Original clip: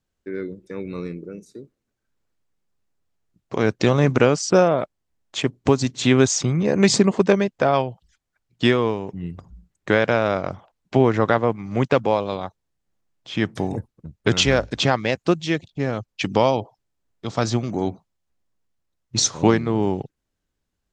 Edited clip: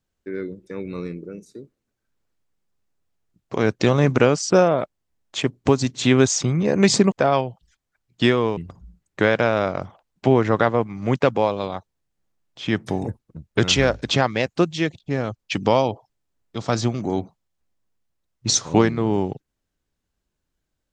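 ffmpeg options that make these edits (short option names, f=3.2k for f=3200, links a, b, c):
-filter_complex "[0:a]asplit=3[a][b][c];[a]atrim=end=7.122[d];[b]atrim=start=7.528:end=8.982[e];[c]atrim=start=9.258[f];[d][e]acrossfade=d=0.004:c1=hsin:c2=hsin[g];[g][f]acrossfade=d=0.004:c1=hsin:c2=hsin"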